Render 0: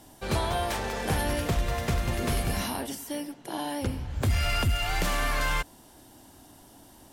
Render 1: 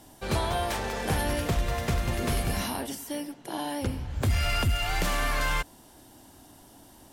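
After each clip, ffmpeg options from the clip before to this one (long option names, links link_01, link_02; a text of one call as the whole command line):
ffmpeg -i in.wav -af anull out.wav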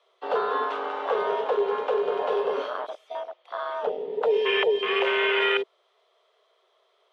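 ffmpeg -i in.wav -af "afreqshift=360,afwtdn=0.0355,lowpass=frequency=3200:width_type=q:width=3.5,volume=2dB" out.wav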